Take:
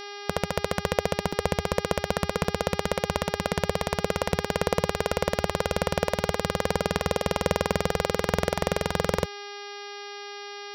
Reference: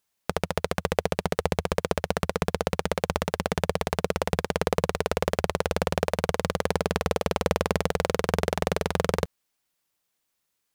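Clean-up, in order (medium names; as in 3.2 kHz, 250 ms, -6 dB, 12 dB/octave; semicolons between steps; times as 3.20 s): de-hum 406.8 Hz, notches 14; interpolate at 1.32/2.10/2.44/4.32/6.99/7.72 s, 4.7 ms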